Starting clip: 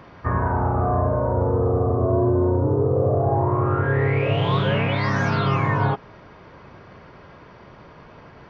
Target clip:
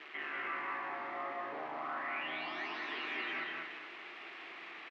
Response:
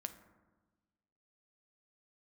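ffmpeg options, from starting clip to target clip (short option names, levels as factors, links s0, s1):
-filter_complex "[0:a]aeval=exprs='val(0)+0.5*0.0531*sgn(val(0))':c=same,aderivative,aeval=exprs='val(0)*sin(2*PI*43*n/s)':c=same,asplit=2[s0][s1];[s1]aecho=0:1:331:0.668[s2];[s0][s2]amix=inputs=2:normalize=0,asetrate=76440,aresample=44100,volume=56.2,asoftclip=hard,volume=0.0178,highpass=f=220:w=0.5412,highpass=f=220:w=1.3066,equalizer=f=220:t=q:w=4:g=-9,equalizer=f=350:t=q:w=4:g=7,equalizer=f=550:t=q:w=4:g=-8,equalizer=f=910:t=q:w=4:g=-7,equalizer=f=1600:t=q:w=4:g=-7,lowpass=f=2300:w=0.5412,lowpass=f=2300:w=1.3066,asplit=2[s3][s4];[s4]aecho=0:1:160.3|227.4:0.251|0.355[s5];[s3][s5]amix=inputs=2:normalize=0,volume=2.51"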